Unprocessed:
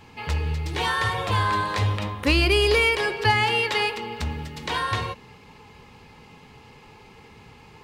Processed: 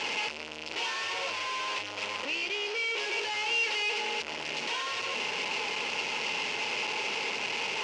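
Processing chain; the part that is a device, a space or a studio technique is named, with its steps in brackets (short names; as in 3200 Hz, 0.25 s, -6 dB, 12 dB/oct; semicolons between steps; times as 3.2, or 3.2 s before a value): home computer beeper (infinite clipping; speaker cabinet 550–5600 Hz, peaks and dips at 740 Hz -6 dB, 1200 Hz -9 dB, 1700 Hz -7 dB, 2700 Hz +7 dB, 3800 Hz -6 dB); 2.24–2.98 high shelf 7800 Hz -10.5 dB; gain -3.5 dB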